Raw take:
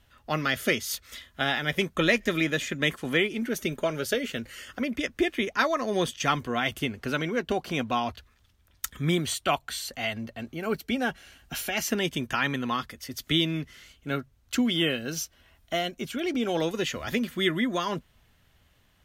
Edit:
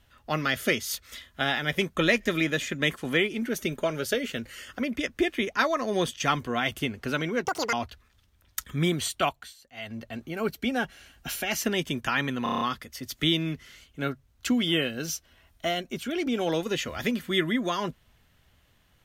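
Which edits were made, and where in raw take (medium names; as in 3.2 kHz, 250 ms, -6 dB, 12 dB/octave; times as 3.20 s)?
7.45–7.99 s: speed 193%
9.49–10.29 s: dip -19 dB, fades 0.31 s
12.69 s: stutter 0.03 s, 7 plays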